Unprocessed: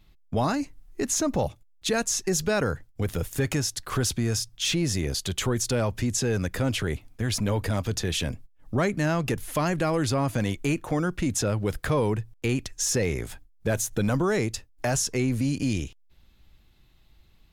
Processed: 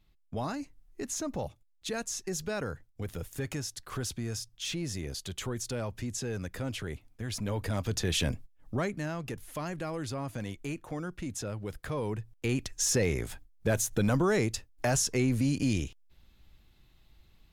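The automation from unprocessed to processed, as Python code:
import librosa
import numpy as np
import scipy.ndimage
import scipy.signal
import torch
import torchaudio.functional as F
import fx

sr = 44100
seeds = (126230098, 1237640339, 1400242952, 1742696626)

y = fx.gain(x, sr, db=fx.line((7.26, -9.5), (8.3, 0.0), (9.12, -11.0), (11.85, -11.0), (12.71, -2.0)))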